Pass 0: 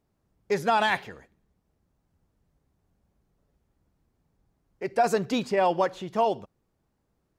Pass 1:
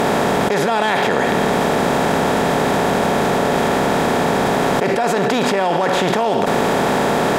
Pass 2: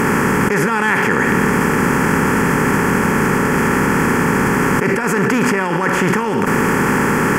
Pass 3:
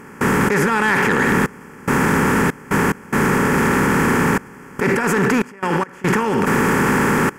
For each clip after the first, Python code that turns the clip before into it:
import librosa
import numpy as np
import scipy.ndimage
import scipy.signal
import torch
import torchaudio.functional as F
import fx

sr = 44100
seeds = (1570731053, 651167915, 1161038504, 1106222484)

y1 = fx.bin_compress(x, sr, power=0.4)
y1 = fx.env_flatten(y1, sr, amount_pct=100)
y1 = F.gain(torch.from_numpy(y1), -1.5).numpy()
y2 = fx.fixed_phaser(y1, sr, hz=1600.0, stages=4)
y2 = F.gain(torch.from_numpy(y2), 6.0).numpy()
y3 = fx.step_gate(y2, sr, bpm=72, pattern='.xxxxxx..xxx.x', floor_db=-24.0, edge_ms=4.5)
y3 = 10.0 ** (-7.0 / 20.0) * np.tanh(y3 / 10.0 ** (-7.0 / 20.0))